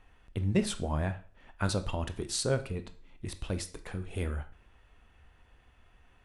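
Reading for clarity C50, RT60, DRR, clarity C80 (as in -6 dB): 14.5 dB, 0.45 s, 9.5 dB, 19.0 dB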